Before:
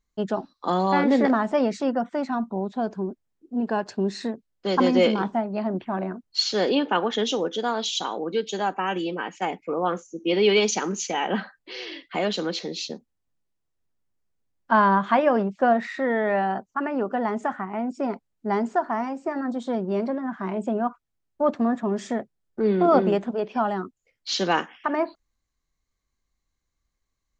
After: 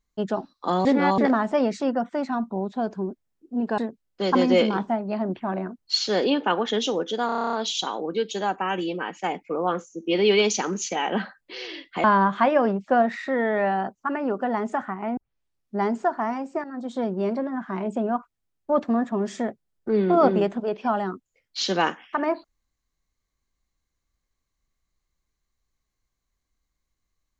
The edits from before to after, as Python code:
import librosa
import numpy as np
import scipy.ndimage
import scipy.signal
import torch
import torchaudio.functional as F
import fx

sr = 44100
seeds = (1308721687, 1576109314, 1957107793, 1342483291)

y = fx.edit(x, sr, fx.reverse_span(start_s=0.85, length_s=0.33),
    fx.cut(start_s=3.78, length_s=0.45),
    fx.stutter(start_s=7.71, slice_s=0.03, count=10),
    fx.cut(start_s=12.22, length_s=2.53),
    fx.tape_start(start_s=17.88, length_s=0.62),
    fx.fade_in_from(start_s=19.35, length_s=0.33, floor_db=-13.5), tone=tone)